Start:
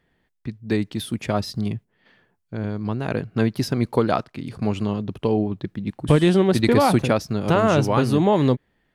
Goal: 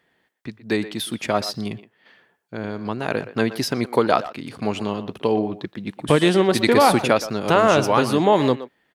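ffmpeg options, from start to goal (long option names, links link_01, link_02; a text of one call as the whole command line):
ffmpeg -i in.wav -filter_complex "[0:a]highpass=frequency=460:poles=1,asplit=2[link_01][link_02];[link_02]adelay=120,highpass=300,lowpass=3400,asoftclip=type=hard:threshold=-15.5dB,volume=-13dB[link_03];[link_01][link_03]amix=inputs=2:normalize=0,volume=5dB" out.wav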